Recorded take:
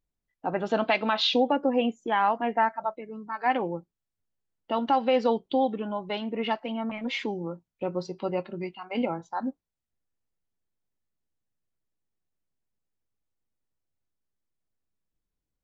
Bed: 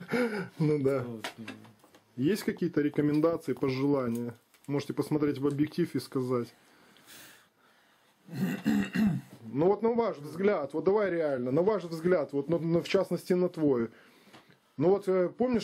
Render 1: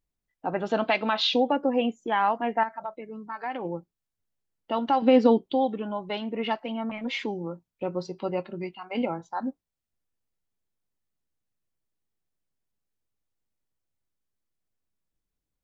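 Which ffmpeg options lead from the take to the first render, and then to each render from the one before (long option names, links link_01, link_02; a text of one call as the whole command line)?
ffmpeg -i in.wav -filter_complex "[0:a]asettb=1/sr,asplit=3[link_01][link_02][link_03];[link_01]atrim=end=2.634[link_04];[link_02]atrim=start=2.63:end=3.65,asetpts=PTS-STARTPTS,afade=type=in:duration=0.004:curve=qsin,afade=type=out:start_time=1.016:duration=0.004:curve=qsin,acompressor=threshold=-30dB:ratio=3:attack=3.2:release=140:knee=1:detection=peak[link_05];[link_03]atrim=start=3.646[link_06];[link_04][link_05]acrossfade=duration=0.004:curve1=hsin:curve2=qsin[link_07];[link_07][link_06]acrossfade=duration=0.004:curve1=qsin:curve2=hsin,asettb=1/sr,asplit=3[link_08][link_09][link_10];[link_08]atrim=end=5.024[link_11];[link_09]atrim=start=5.02:end=5.45,asetpts=PTS-STARTPTS,afade=type=in:duration=0.004:curve=qsin,afade=type=out:start_time=0.426:duration=0.004:curve=qsin,equalizer=frequency=290:width=1.5:gain=13[link_12];[link_10]atrim=start=5.446[link_13];[link_11][link_12]acrossfade=duration=0.004:curve1=hsin:curve2=qsin[link_14];[link_14][link_13]acrossfade=duration=0.004:curve1=qsin:curve2=hsin" out.wav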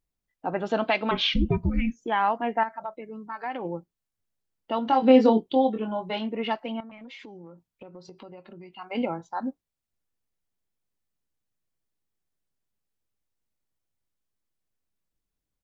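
ffmpeg -i in.wav -filter_complex "[0:a]asettb=1/sr,asplit=3[link_01][link_02][link_03];[link_01]atrim=end=1.114[link_04];[link_02]atrim=start=1.11:end=2.02,asetpts=PTS-STARTPTS,afade=type=in:duration=0.004:curve=qsin,afade=type=out:start_time=0.906:duration=0.004:curve=qsin,afreqshift=-460[link_05];[link_03]atrim=start=2.016[link_06];[link_04][link_05]acrossfade=duration=0.004:curve1=hsin:curve2=qsin[link_07];[link_07][link_06]acrossfade=duration=0.004:curve1=qsin:curve2=hsin,asplit=3[link_08][link_09][link_10];[link_08]afade=type=out:start_time=4.84:duration=0.02[link_11];[link_09]asplit=2[link_12][link_13];[link_13]adelay=23,volume=-4.5dB[link_14];[link_12][link_14]amix=inputs=2:normalize=0,afade=type=in:start_time=4.84:duration=0.02,afade=type=out:start_time=6.27:duration=0.02[link_15];[link_10]afade=type=in:start_time=6.27:duration=0.02[link_16];[link_11][link_15][link_16]amix=inputs=3:normalize=0,asettb=1/sr,asplit=3[link_17][link_18][link_19];[link_17]atrim=end=6.804[link_20];[link_18]atrim=start=6.8:end=8.75,asetpts=PTS-STARTPTS,afade=type=in:duration=0.004:curve=qsin,afade=type=out:start_time=1.946:duration=0.004:curve=qsin,acompressor=threshold=-41dB:ratio=8:attack=3.2:release=140:knee=1:detection=peak[link_21];[link_19]atrim=start=8.746[link_22];[link_20][link_21]acrossfade=duration=0.004:curve1=hsin:curve2=qsin[link_23];[link_23][link_22]acrossfade=duration=0.004:curve1=qsin:curve2=hsin" out.wav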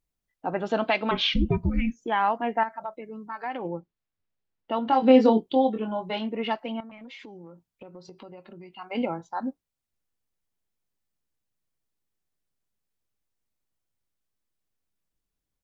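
ffmpeg -i in.wav -filter_complex "[0:a]asettb=1/sr,asplit=3[link_01][link_02][link_03];[link_01]atrim=end=3.674[link_04];[link_02]atrim=start=3.67:end=4.92,asetpts=PTS-STARTPTS,afade=type=in:duration=0.004:curve=qsin,afade=type=out:start_time=1.246:duration=0.004:curve=qsin,lowpass=3800[link_05];[link_03]atrim=start=4.916[link_06];[link_04][link_05]acrossfade=duration=0.004:curve1=hsin:curve2=qsin[link_07];[link_07][link_06]acrossfade=duration=0.004:curve1=qsin:curve2=hsin" out.wav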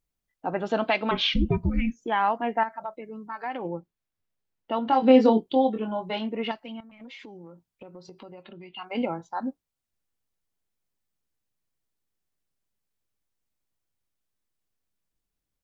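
ffmpeg -i in.wav -filter_complex "[0:a]asettb=1/sr,asplit=3[link_01][link_02][link_03];[link_01]atrim=end=6.514[link_04];[link_02]atrim=start=6.51:end=7,asetpts=PTS-STARTPTS,afade=type=in:duration=0.004:curve=qsin,afade=type=out:start_time=0.486:duration=0.004:curve=qsin,equalizer=frequency=710:width=0.33:gain=-10[link_05];[link_03]atrim=start=6.996[link_06];[link_04][link_05]acrossfade=duration=0.004:curve1=hsin:curve2=qsin[link_07];[link_07][link_06]acrossfade=duration=0.004:curve1=qsin:curve2=hsin,asettb=1/sr,asplit=3[link_08][link_09][link_10];[link_08]atrim=end=8.434[link_11];[link_09]atrim=start=8.43:end=8.85,asetpts=PTS-STARTPTS,afade=type=in:duration=0.004:curve=qsin,afade=type=out:start_time=0.416:duration=0.004:curve=qsin,lowpass=frequency=3400:width_type=q:width=4.3[link_12];[link_10]atrim=start=8.846[link_13];[link_11][link_12]acrossfade=duration=0.004:curve1=hsin:curve2=qsin[link_14];[link_14][link_13]acrossfade=duration=0.004:curve1=qsin:curve2=hsin" out.wav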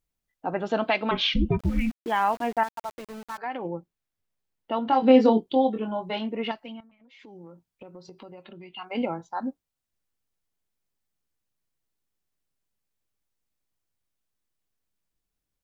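ffmpeg -i in.wav -filter_complex "[0:a]asettb=1/sr,asplit=3[link_01][link_02][link_03];[link_01]atrim=end=1.594[link_04];[link_02]atrim=start=1.59:end=3.38,asetpts=PTS-STARTPTS,afade=type=in:duration=0.004:curve=qsin,afade=type=out:start_time=1.786:duration=0.004:curve=qsin,aeval=exprs='val(0)*gte(abs(val(0)),0.0112)':channel_layout=same[link_05];[link_03]atrim=start=3.376[link_06];[link_04][link_05]acrossfade=duration=0.004:curve1=hsin:curve2=qsin[link_07];[link_07][link_06]acrossfade=duration=0.004:curve1=qsin:curve2=hsin,asplit=3[link_08][link_09][link_10];[link_08]atrim=end=6.97,asetpts=PTS-STARTPTS,afade=type=out:start_time=6.67:duration=0.3:silence=0.211349[link_11];[link_09]atrim=start=6.97:end=7.1,asetpts=PTS-STARTPTS,volume=-13.5dB[link_12];[link_10]atrim=start=7.1,asetpts=PTS-STARTPTS,afade=type=in:duration=0.3:silence=0.211349[link_13];[link_11][link_12][link_13]concat=n=3:v=0:a=1" out.wav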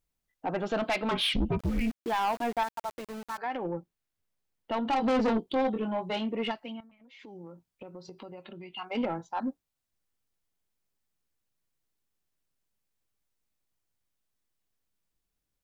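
ffmpeg -i in.wav -af "asoftclip=type=tanh:threshold=-23dB" out.wav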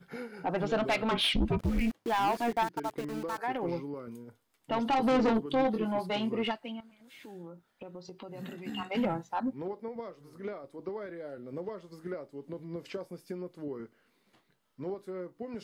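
ffmpeg -i in.wav -i bed.wav -filter_complex "[1:a]volume=-12.5dB[link_01];[0:a][link_01]amix=inputs=2:normalize=0" out.wav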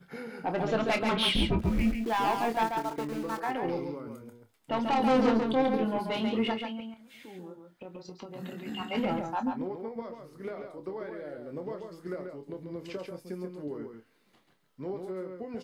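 ffmpeg -i in.wav -filter_complex "[0:a]asplit=2[link_01][link_02];[link_02]adelay=27,volume=-9.5dB[link_03];[link_01][link_03]amix=inputs=2:normalize=0,asplit=2[link_04][link_05];[link_05]aecho=0:1:138:0.531[link_06];[link_04][link_06]amix=inputs=2:normalize=0" out.wav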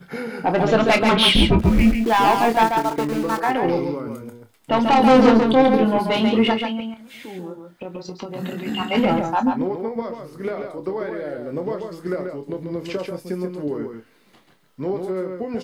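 ffmpeg -i in.wav -af "volume=11.5dB" out.wav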